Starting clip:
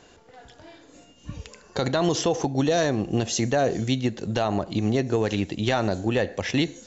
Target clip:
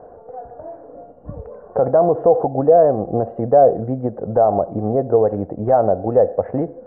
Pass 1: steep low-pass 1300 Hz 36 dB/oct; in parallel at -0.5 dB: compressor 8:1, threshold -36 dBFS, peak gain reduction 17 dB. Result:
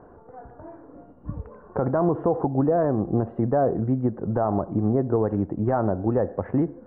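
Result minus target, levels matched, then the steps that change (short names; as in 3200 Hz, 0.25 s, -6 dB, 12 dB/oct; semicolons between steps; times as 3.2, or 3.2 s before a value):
500 Hz band -3.0 dB
add after steep low-pass: band shelf 590 Hz +12 dB 1 oct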